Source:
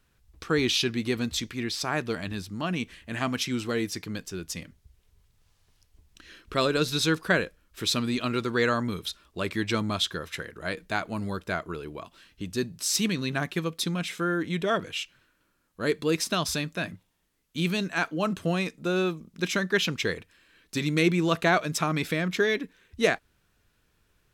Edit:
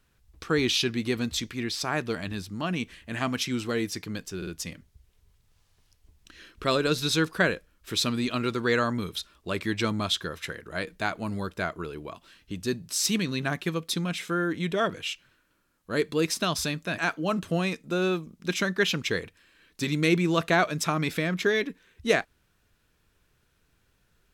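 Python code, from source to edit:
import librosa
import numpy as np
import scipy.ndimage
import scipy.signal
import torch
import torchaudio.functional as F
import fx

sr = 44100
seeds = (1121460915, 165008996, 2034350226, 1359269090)

y = fx.edit(x, sr, fx.stutter(start_s=4.37, slice_s=0.05, count=3),
    fx.cut(start_s=16.88, length_s=1.04), tone=tone)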